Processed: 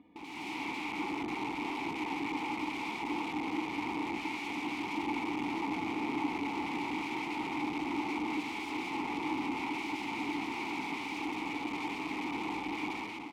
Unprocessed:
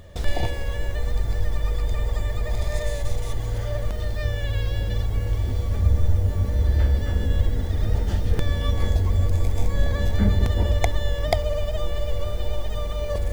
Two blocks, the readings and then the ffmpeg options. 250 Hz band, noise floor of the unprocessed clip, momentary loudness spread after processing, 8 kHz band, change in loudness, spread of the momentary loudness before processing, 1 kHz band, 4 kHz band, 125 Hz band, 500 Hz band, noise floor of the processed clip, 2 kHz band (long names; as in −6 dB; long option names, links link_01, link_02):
0.0 dB, −28 dBFS, 2 LU, can't be measured, −10.5 dB, 7 LU, +2.0 dB, −6.0 dB, −30.0 dB, −13.0 dB, −41 dBFS, 0.0 dB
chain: -filter_complex "[0:a]highpass=120,lowpass=3100,asoftclip=type=tanh:threshold=-24dB,aecho=1:1:4.1:0.84,aeval=exprs='0.119*(cos(1*acos(clip(val(0)/0.119,-1,1)))-cos(1*PI/2))+0.0075*(cos(2*acos(clip(val(0)/0.119,-1,1)))-cos(2*PI/2))+0.00299*(cos(3*acos(clip(val(0)/0.119,-1,1)))-cos(3*PI/2))+0.00376*(cos(5*acos(clip(val(0)/0.119,-1,1)))-cos(5*PI/2))+0.00422*(cos(7*acos(clip(val(0)/0.119,-1,1)))-cos(7*PI/2))':channel_layout=same,aeval=exprs='(mod(39.8*val(0)+1,2)-1)/39.8':channel_layout=same,asplit=3[link_01][link_02][link_03];[link_01]bandpass=frequency=300:width_type=q:width=8,volume=0dB[link_04];[link_02]bandpass=frequency=870:width_type=q:width=8,volume=-6dB[link_05];[link_03]bandpass=frequency=2240:width_type=q:width=8,volume=-9dB[link_06];[link_04][link_05][link_06]amix=inputs=3:normalize=0,dynaudnorm=framelen=100:gausssize=7:maxgain=11.5dB,volume=4dB"